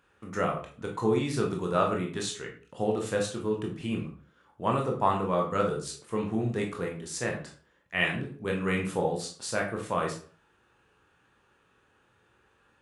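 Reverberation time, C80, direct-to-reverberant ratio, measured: 0.45 s, 12.5 dB, 0.0 dB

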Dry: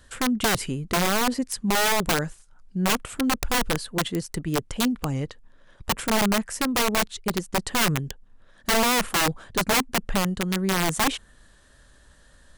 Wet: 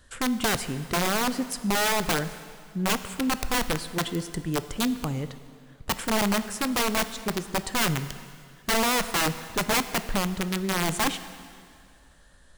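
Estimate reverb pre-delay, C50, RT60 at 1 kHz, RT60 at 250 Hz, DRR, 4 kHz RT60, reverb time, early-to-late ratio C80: 7 ms, 13.0 dB, 2.2 s, 2.1 s, 11.5 dB, 2.0 s, 2.2 s, 13.5 dB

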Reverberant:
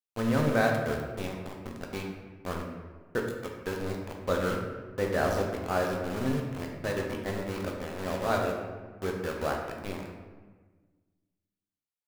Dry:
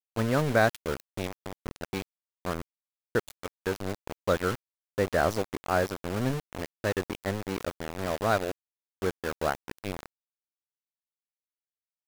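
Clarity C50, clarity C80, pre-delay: 3.5 dB, 5.0 dB, 4 ms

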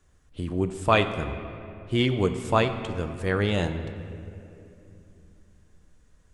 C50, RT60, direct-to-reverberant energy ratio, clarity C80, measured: 9.5 dB, 2.9 s, 7.5 dB, 10.5 dB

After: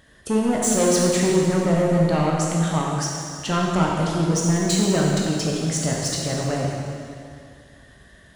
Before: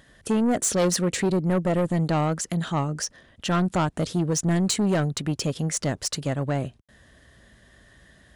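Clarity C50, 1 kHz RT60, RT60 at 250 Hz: -1.0 dB, 2.3 s, 2.2 s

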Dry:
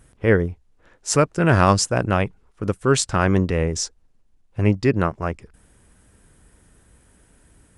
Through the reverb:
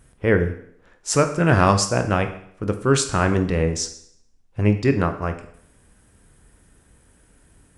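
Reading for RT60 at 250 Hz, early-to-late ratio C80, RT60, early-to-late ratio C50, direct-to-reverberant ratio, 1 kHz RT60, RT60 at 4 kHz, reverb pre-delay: 0.65 s, 14.5 dB, 0.65 s, 11.0 dB, 7.0 dB, 0.65 s, 0.65 s, 20 ms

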